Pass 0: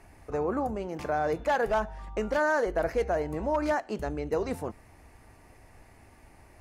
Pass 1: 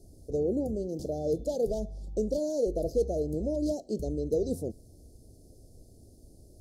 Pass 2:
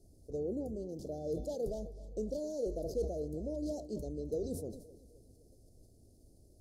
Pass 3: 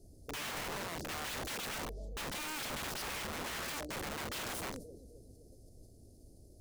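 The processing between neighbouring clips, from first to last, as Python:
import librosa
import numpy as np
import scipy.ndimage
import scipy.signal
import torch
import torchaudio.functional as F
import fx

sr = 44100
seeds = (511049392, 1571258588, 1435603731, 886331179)

y1 = scipy.signal.sosfilt(scipy.signal.cheby2(4, 50, [1000.0, 2500.0], 'bandstop', fs=sr, output='sos'), x)
y1 = F.gain(torch.from_numpy(y1), 2.0).numpy()
y2 = fx.echo_feedback(y1, sr, ms=260, feedback_pct=49, wet_db=-18)
y2 = fx.sustainer(y2, sr, db_per_s=82.0)
y2 = F.gain(torch.from_numpy(y2), -8.5).numpy()
y3 = (np.mod(10.0 ** (39.5 / 20.0) * y2 + 1.0, 2.0) - 1.0) / 10.0 ** (39.5 / 20.0)
y3 = F.gain(torch.from_numpy(y3), 4.0).numpy()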